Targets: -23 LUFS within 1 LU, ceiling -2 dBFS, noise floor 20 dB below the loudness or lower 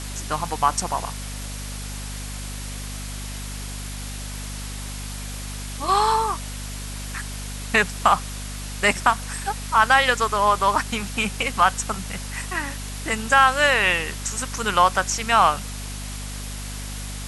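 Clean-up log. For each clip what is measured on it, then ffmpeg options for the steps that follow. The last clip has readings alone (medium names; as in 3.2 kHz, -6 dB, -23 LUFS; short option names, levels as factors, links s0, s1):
hum 50 Hz; highest harmonic 250 Hz; hum level -31 dBFS; noise floor -32 dBFS; noise floor target -43 dBFS; loudness -23.0 LUFS; peak level -3.0 dBFS; loudness target -23.0 LUFS
-> -af "bandreject=f=50:t=h:w=4,bandreject=f=100:t=h:w=4,bandreject=f=150:t=h:w=4,bandreject=f=200:t=h:w=4,bandreject=f=250:t=h:w=4"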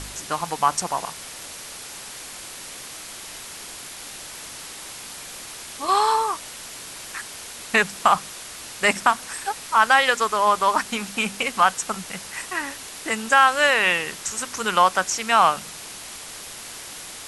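hum not found; noise floor -38 dBFS; noise floor target -41 dBFS
-> -af "afftdn=nr=6:nf=-38"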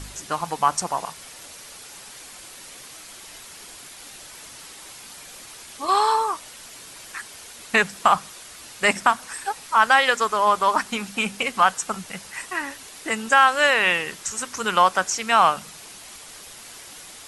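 noise floor -43 dBFS; loudness -21.0 LUFS; peak level -3.0 dBFS; loudness target -23.0 LUFS
-> -af "volume=0.794"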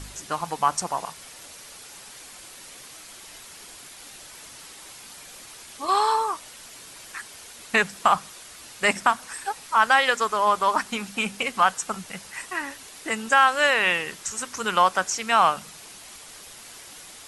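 loudness -23.0 LUFS; peak level -5.0 dBFS; noise floor -45 dBFS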